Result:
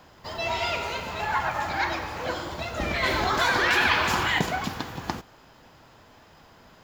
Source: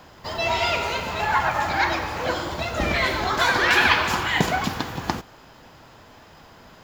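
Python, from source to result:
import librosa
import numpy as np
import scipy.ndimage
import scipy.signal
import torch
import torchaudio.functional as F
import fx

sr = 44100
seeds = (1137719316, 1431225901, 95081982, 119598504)

y = fx.env_flatten(x, sr, amount_pct=50, at=(3.03, 4.39))
y = F.gain(torch.from_numpy(y), -5.0).numpy()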